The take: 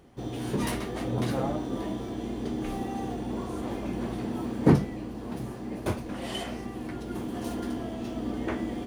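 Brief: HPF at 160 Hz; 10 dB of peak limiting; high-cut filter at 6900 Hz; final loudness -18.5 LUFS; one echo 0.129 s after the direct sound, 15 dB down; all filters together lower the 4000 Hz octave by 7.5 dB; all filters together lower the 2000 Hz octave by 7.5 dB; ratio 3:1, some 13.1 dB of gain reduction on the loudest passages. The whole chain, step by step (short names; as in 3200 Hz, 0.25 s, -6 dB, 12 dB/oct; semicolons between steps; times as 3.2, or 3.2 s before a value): HPF 160 Hz; LPF 6900 Hz; bell 2000 Hz -8 dB; bell 4000 Hz -6.5 dB; compressor 3:1, threshold -33 dBFS; limiter -29 dBFS; echo 0.129 s -15 dB; gain +20 dB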